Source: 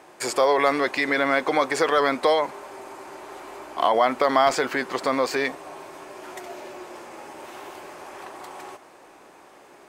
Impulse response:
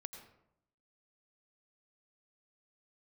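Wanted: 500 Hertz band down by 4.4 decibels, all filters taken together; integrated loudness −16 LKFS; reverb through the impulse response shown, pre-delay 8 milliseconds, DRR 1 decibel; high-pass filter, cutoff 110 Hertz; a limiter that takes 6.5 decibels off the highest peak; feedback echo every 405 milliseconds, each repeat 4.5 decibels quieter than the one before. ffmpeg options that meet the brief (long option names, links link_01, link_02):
-filter_complex "[0:a]highpass=110,equalizer=frequency=500:width_type=o:gain=-5.5,alimiter=limit=-14.5dB:level=0:latency=1,aecho=1:1:405|810|1215|1620|2025|2430|2835|3240|3645:0.596|0.357|0.214|0.129|0.0772|0.0463|0.0278|0.0167|0.01,asplit=2[link_01][link_02];[1:a]atrim=start_sample=2205,adelay=8[link_03];[link_02][link_03]afir=irnorm=-1:irlink=0,volume=3dB[link_04];[link_01][link_04]amix=inputs=2:normalize=0,volume=8dB"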